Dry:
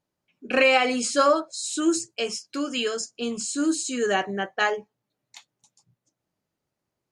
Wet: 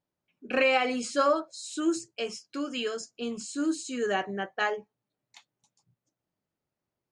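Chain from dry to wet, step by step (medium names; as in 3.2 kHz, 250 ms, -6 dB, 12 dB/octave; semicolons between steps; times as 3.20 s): treble shelf 5.7 kHz -9 dB; trim -4.5 dB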